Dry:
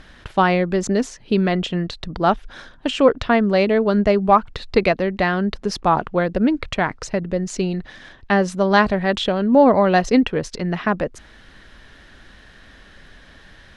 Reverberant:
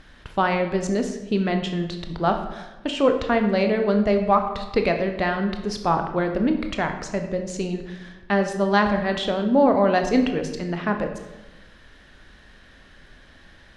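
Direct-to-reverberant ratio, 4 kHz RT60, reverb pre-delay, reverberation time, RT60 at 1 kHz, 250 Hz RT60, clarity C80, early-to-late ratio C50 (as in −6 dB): 5.5 dB, 0.75 s, 19 ms, 1.1 s, 1.0 s, 1.4 s, 10.0 dB, 7.5 dB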